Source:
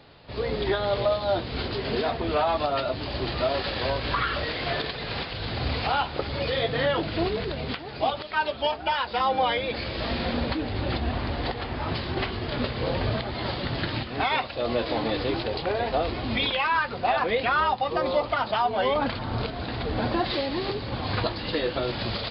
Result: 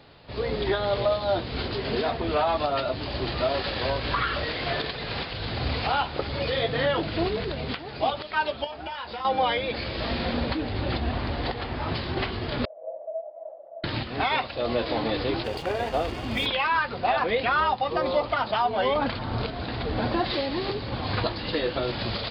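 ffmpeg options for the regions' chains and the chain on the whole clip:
-filter_complex "[0:a]asettb=1/sr,asplit=3[s0][s1][s2];[s0]atrim=end=8.644[s3];[s1]atrim=start=8.64:end=9.25,asetpts=PTS-STARTPTS,afade=t=in:d=0.004:c=qsin,afade=t=out:st=0.606:d=0.004:c=qsin,acompressor=threshold=0.0251:ratio=5:attack=3.2:release=140:knee=1:detection=peak,asplit=2[s4][s5];[s5]adelay=26,volume=0.282[s6];[s4][s6]amix=inputs=2:normalize=0,atrim=end_sample=26901[s7];[s2]atrim=start=9.246[s8];[s3][s7]acrossfade=d=0.004:c1=hsin:c2=qsin[s9];[s9][s8]acrossfade=d=0.004:c1=qsin:c2=hsin,asettb=1/sr,asplit=3[s10][s11][s12];[s10]atrim=end=12.654[s13];[s11]atrim=start=12.65:end=13.84,asetpts=PTS-STARTPTS,afade=t=in:d=0.004:c=qsin,afade=t=out:st=1.186:d=0.004:c=qsin,asuperpass=centerf=620:order=4:qfactor=6.4,aecho=1:1:6.1:0.69,atrim=end_sample=52479[s14];[s12]atrim=start=13.836[s15];[s13][s14]acrossfade=d=0.004:c1=hsin:c2=qsin[s16];[s16][s15]acrossfade=d=0.004:c1=qsin:c2=hsin,asettb=1/sr,asplit=3[s17][s18][s19];[s17]atrim=end=15.444[s20];[s18]atrim=start=15.44:end=16.46,asetpts=PTS-STARTPTS,afade=t=in:d=0.004:c=qsin,afade=t=out:st=1.016:d=0.004:c=qsin,bandreject=f=4000:w=8.7,aeval=exprs='sgn(val(0))*max(abs(val(0))-0.00841,0)':c=same,aeval=exprs='val(0)+0.00355*sin(2*PI*2800*n/s)':c=same[s21];[s19]atrim=start=16.456[s22];[s20][s21]acrossfade=d=0.004:c1=hsin:c2=qsin[s23];[s23][s22]acrossfade=d=0.004:c1=qsin:c2=hsin"

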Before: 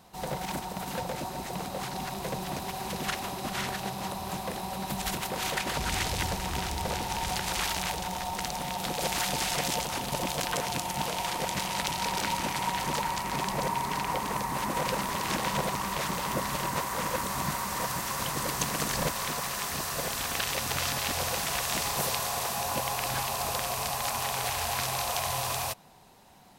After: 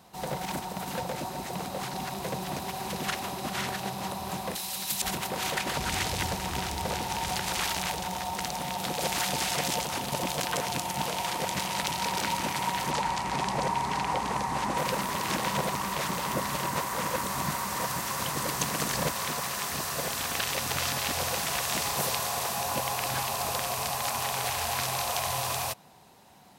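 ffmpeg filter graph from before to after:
-filter_complex "[0:a]asettb=1/sr,asplit=3[s0][s1][s2];[s0]atrim=end=4.554[s3];[s1]atrim=start=4.55:end=5.02,asetpts=PTS-STARTPTS,afade=t=in:d=0.004:c=qsin,afade=t=out:st=0.466:d=0.004:c=qsin,acrossover=split=380|3000[s4][s5][s6];[s5]acompressor=threshold=0.0141:ratio=6:attack=3.2:release=140:knee=2.83:detection=peak[s7];[s4][s7][s6]amix=inputs=3:normalize=0,tiltshelf=f=1400:g=-10[s8];[s2]atrim=start=5.016[s9];[s3][s8]acrossfade=d=0.004:c1=hsin:c2=qsin[s10];[s10][s9]acrossfade=d=0.004:c1=qsin:c2=hsin,asettb=1/sr,asplit=3[s11][s12][s13];[s11]atrim=end=12.914[s14];[s12]atrim=start=12.91:end=14.78,asetpts=PTS-STARTPTS,afade=t=in:d=0.004:c=qsin,afade=t=out:st=1.866:d=0.004:c=qsin,lowpass=8600,equalizer=f=800:t=o:w=0.22:g=5.5,aeval=exprs='val(0)+0.00631*(sin(2*PI*60*n/s)+sin(2*PI*2*60*n/s)/2+sin(2*PI*3*60*n/s)/3+sin(2*PI*4*60*n/s)/4+sin(2*PI*5*60*n/s)/5)':c=same[s15];[s13]atrim=start=14.776[s16];[s14][s15]acrossfade=d=0.004:c1=hsin:c2=qsin[s17];[s17][s16]acrossfade=d=0.004:c1=qsin:c2=hsin,highpass=69,acontrast=54,volume=0.531"

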